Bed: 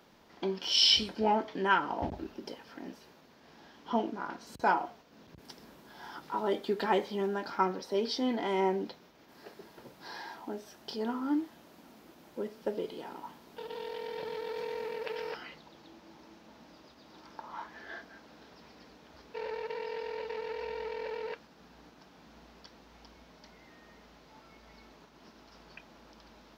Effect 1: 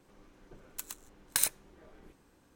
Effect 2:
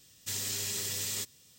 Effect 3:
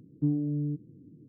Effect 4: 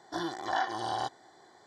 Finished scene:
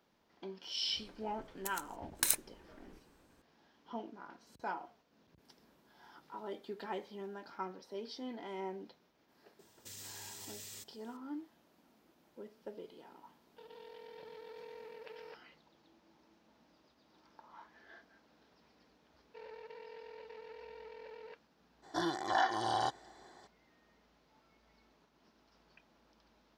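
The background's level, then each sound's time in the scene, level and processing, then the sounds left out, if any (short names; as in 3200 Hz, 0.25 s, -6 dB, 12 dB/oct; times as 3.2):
bed -13 dB
0.87 add 1 -2.5 dB
9.59 add 2 -10 dB + limiter -29.5 dBFS
21.82 add 4 -0.5 dB, fades 0.02 s
not used: 3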